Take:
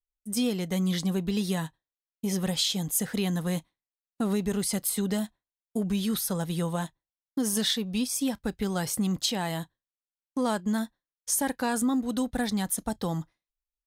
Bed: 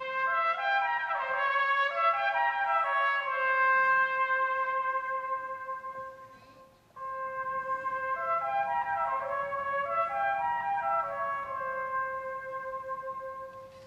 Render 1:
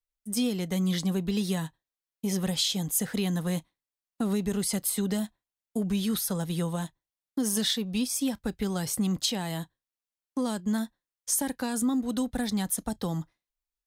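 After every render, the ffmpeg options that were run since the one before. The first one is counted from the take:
-filter_complex "[0:a]acrossover=split=360|3000[a][b][c];[b]acompressor=threshold=-34dB:ratio=6[d];[a][d][c]amix=inputs=3:normalize=0"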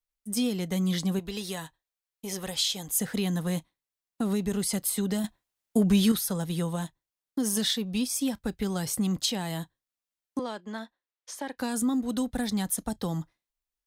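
-filter_complex "[0:a]asettb=1/sr,asplit=3[a][b][c];[a]atrim=end=1.194[d];[b]atrim=start=1.19:end=2.91,asetpts=PTS-STARTPTS,afade=t=in:d=0.004:c=qsin,afade=t=out:st=1.716:d=0.004:c=qsin,equalizer=f=180:t=o:w=1.6:g=-10.5[e];[c]atrim=start=2.906[f];[d][e]acrossfade=d=0.004:c1=hsin:c2=qsin[g];[g][f]acrossfade=d=0.004:c1=qsin:c2=hsin,asettb=1/sr,asplit=3[h][i][j];[h]atrim=end=5.244[k];[i]atrim=start=5.24:end=6.12,asetpts=PTS-STARTPTS,afade=t=in:d=0.004:c=qsin,afade=t=out:st=0.876:d=0.004:c=qsin,acontrast=66[l];[j]atrim=start=6.116[m];[k][l]acrossfade=d=0.004:c1=hsin:c2=qsin[n];[n][m]acrossfade=d=0.004:c1=qsin:c2=hsin,asettb=1/sr,asplit=3[o][p][q];[o]atrim=end=10.394[r];[p]atrim=start=10.39:end=11.58,asetpts=PTS-STARTPTS,afade=t=in:d=0.004:c=qsin,afade=t=out:st=1.186:d=0.004:c=qsin,acrossover=split=320 4600:gain=0.112 1 0.0891[s][t][u];[s][t][u]amix=inputs=3:normalize=0[v];[q]atrim=start=11.576[w];[r][v]acrossfade=d=0.004:c1=hsin:c2=qsin[x];[x][w]acrossfade=d=0.004:c1=qsin:c2=hsin"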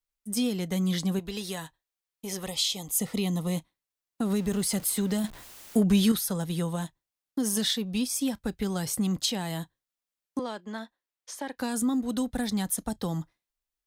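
-filter_complex "[0:a]asettb=1/sr,asplit=3[a][b][c];[a]atrim=end=2.464[d];[b]atrim=start=2.46:end=3.57,asetpts=PTS-STARTPTS,afade=t=in:d=0.004:c=qsin,afade=t=out:st=1.106:d=0.004:c=qsin,asuperstop=centerf=1600:order=4:qfactor=3[e];[c]atrim=start=3.566[f];[d][e]acrossfade=d=0.004:c1=hsin:c2=qsin[g];[g][f]acrossfade=d=0.004:c1=qsin:c2=hsin,asettb=1/sr,asplit=3[h][i][j];[h]atrim=end=4.304[k];[i]atrim=start=4.3:end=5.8,asetpts=PTS-STARTPTS,afade=t=in:d=0.004:c=qsin,afade=t=out:st=1.496:d=0.004:c=qsin,aeval=exprs='val(0)+0.5*0.01*sgn(val(0))':c=same[l];[j]atrim=start=5.796[m];[k][l]acrossfade=d=0.004:c1=hsin:c2=qsin[n];[n][m]acrossfade=d=0.004:c1=qsin:c2=hsin"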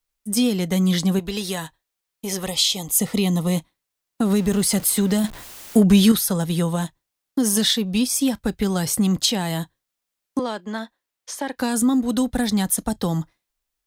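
-af "volume=8dB"

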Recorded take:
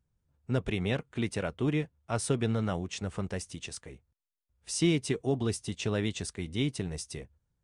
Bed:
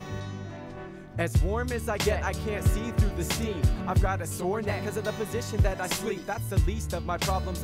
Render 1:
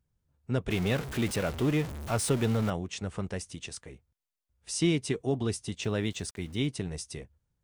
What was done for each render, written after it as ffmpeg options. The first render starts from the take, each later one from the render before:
-filter_complex "[0:a]asettb=1/sr,asplit=3[a][b][c];[a]atrim=end=0.704[d];[b]atrim=start=0.7:end=2.7,asetpts=PTS-STARTPTS,afade=t=in:d=0.004:c=qsin,afade=t=out:st=1.996:d=0.004:c=qsin,aeval=exprs='val(0)+0.5*0.0237*sgn(val(0))':c=same[e];[c]atrim=start=2.696[f];[d][e]acrossfade=d=0.004:c1=hsin:c2=qsin[g];[g][f]acrossfade=d=0.004:c1=qsin:c2=hsin,asettb=1/sr,asplit=3[h][i][j];[h]atrim=end=5.834[k];[i]atrim=start=5.83:end=6.67,asetpts=PTS-STARTPTS,afade=t=in:d=0.004:c=qsin,afade=t=out:st=0.836:d=0.004:c=qsin,aeval=exprs='val(0)*gte(abs(val(0)),0.00224)':c=same[l];[j]atrim=start=6.666[m];[k][l]acrossfade=d=0.004:c1=hsin:c2=qsin[n];[n][m]acrossfade=d=0.004:c1=qsin:c2=hsin"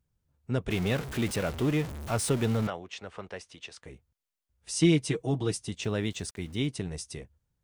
-filter_complex "[0:a]asettb=1/sr,asplit=3[a][b][c];[a]atrim=end=2.674[d];[b]atrim=start=2.67:end=3.83,asetpts=PTS-STARTPTS,afade=t=in:d=0.004:c=qsin,afade=t=out:st=1.156:d=0.004:c=qsin,acrossover=split=400 5000:gain=0.2 1 0.178[e][f][g];[e][f][g]amix=inputs=3:normalize=0[h];[c]atrim=start=3.826[i];[d][h]acrossfade=d=0.004:c1=hsin:c2=qsin[j];[j][i]acrossfade=d=0.004:c1=qsin:c2=hsin,asettb=1/sr,asplit=3[k][l][m];[k]atrim=end=4.764[n];[l]atrim=start=4.76:end=5.58,asetpts=PTS-STARTPTS,afade=t=in:d=0.004:c=qsin,afade=t=out:st=0.816:d=0.004:c=qsin,aecho=1:1:6.3:0.69,atrim=end_sample=36162[o];[m]atrim=start=5.576[p];[n][o]acrossfade=d=0.004:c1=hsin:c2=qsin[q];[q][p]acrossfade=d=0.004:c1=qsin:c2=hsin"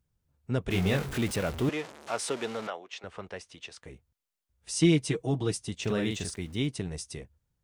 -filter_complex "[0:a]asettb=1/sr,asplit=3[a][b][c];[a]atrim=end=0.714[d];[b]atrim=start=0.71:end=1.18,asetpts=PTS-STARTPTS,afade=t=in:d=0.004:c=qsin,afade=t=out:st=0.466:d=0.004:c=qsin,asplit=2[e][f];[f]adelay=21,volume=-3.5dB[g];[e][g]amix=inputs=2:normalize=0,atrim=end_sample=20727[h];[c]atrim=start=1.176[i];[d][h]acrossfade=d=0.004:c1=hsin:c2=qsin[j];[j][i]acrossfade=d=0.004:c1=qsin:c2=hsin,asettb=1/sr,asplit=3[k][l][m];[k]atrim=end=1.694[n];[l]atrim=start=1.69:end=3.04,asetpts=PTS-STARTPTS,afade=t=in:d=0.004:c=qsin,afade=t=out:st=1.346:d=0.004:c=qsin,highpass=420,lowpass=7.8k[o];[m]atrim=start=3.036[p];[n][o]acrossfade=d=0.004:c1=hsin:c2=qsin[q];[q][p]acrossfade=d=0.004:c1=qsin:c2=hsin,asettb=1/sr,asplit=3[r][s][t];[r]atrim=end=5.834[u];[s]atrim=start=5.83:end=6.36,asetpts=PTS-STARTPTS,afade=t=in:d=0.004:c=qsin,afade=t=out:st=0.526:d=0.004:c=qsin,asplit=2[v][w];[w]adelay=43,volume=-3dB[x];[v][x]amix=inputs=2:normalize=0,atrim=end_sample=23373[y];[t]atrim=start=6.356[z];[u][y]acrossfade=d=0.004:c1=hsin:c2=qsin[aa];[aa][z]acrossfade=d=0.004:c1=qsin:c2=hsin"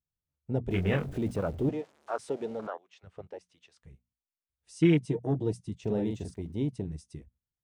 -af "bandreject=f=60:t=h:w=6,bandreject=f=120:t=h:w=6,bandreject=f=180:t=h:w=6,bandreject=f=240:t=h:w=6,afwtdn=0.0224"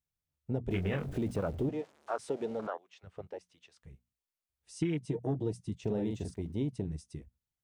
-af "acompressor=threshold=-28dB:ratio=12"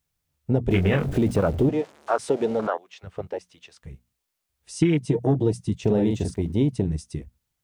-af "volume=12dB"

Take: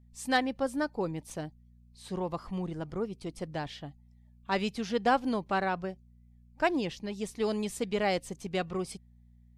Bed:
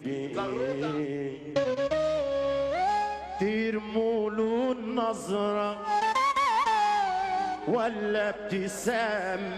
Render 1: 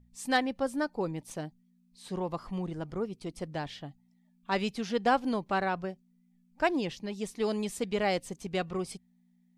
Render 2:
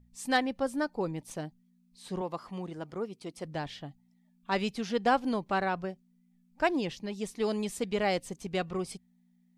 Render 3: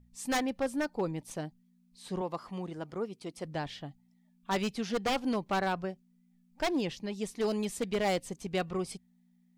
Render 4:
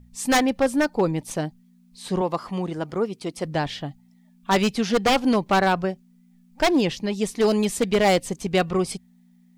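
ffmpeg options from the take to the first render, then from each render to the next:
-af "bandreject=f=60:t=h:w=4,bandreject=f=120:t=h:w=4"
-filter_complex "[0:a]asettb=1/sr,asplit=3[a][b][c];[a]atrim=end=2.214[d];[b]atrim=start=2.21:end=3.45,asetpts=PTS-STARTPTS,afade=t=in:d=0.004:c=qsin,afade=t=out:st=1.236:d=0.004:c=qsin,highpass=f=260:p=1[e];[c]atrim=start=3.446[f];[d][e]acrossfade=d=0.004:c1=hsin:c2=qsin[g];[g][f]acrossfade=d=0.004:c1=qsin:c2=hsin"
-af "aeval=exprs='0.0708*(abs(mod(val(0)/0.0708+3,4)-2)-1)':c=same"
-af "volume=11dB"

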